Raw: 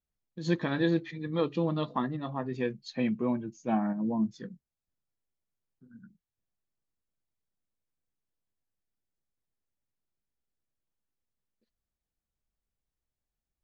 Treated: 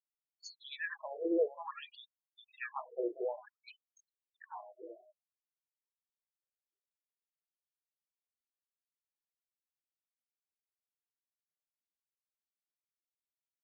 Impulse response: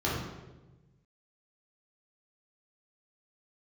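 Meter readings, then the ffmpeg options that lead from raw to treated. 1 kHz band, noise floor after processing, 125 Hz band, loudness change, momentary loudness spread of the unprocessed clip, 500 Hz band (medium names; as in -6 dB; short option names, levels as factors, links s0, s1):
-9.0 dB, under -85 dBFS, under -40 dB, -8.0 dB, 7 LU, -4.5 dB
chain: -af "aecho=1:1:397|794|1191|1588|1985:0.631|0.24|0.0911|0.0346|0.0132,afftfilt=real='re*gte(hypot(re,im),0.00631)':imag='im*gte(hypot(re,im),0.00631)':win_size=1024:overlap=0.75,afftfilt=real='re*between(b*sr/1024,470*pow(6200/470,0.5+0.5*sin(2*PI*0.56*pts/sr))/1.41,470*pow(6200/470,0.5+0.5*sin(2*PI*0.56*pts/sr))*1.41)':imag='im*between(b*sr/1024,470*pow(6200/470,0.5+0.5*sin(2*PI*0.56*pts/sr))/1.41,470*pow(6200/470,0.5+0.5*sin(2*PI*0.56*pts/sr))*1.41)':win_size=1024:overlap=0.75"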